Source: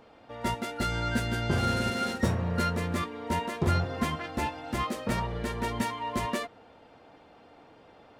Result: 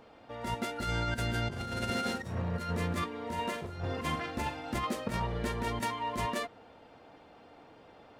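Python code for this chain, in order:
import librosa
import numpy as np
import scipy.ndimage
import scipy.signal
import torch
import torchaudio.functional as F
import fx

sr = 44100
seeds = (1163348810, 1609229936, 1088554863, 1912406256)

y = fx.over_compress(x, sr, threshold_db=-30.0, ratio=-0.5)
y = fx.room_flutter(y, sr, wall_m=7.3, rt60_s=0.32, at=(3.21, 4.7))
y = y * librosa.db_to_amplitude(-2.5)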